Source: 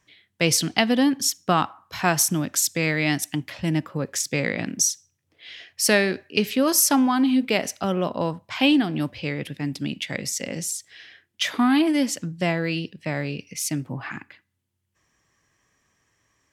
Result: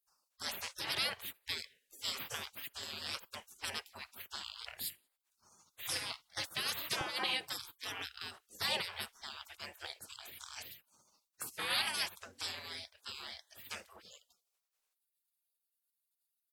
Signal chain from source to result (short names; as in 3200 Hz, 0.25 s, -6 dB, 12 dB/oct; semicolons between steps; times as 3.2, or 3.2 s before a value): 7.01–7.66 resonant low shelf 170 Hz -6.5 dB, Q 1.5; spectral gate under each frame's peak -30 dB weak; gain +4 dB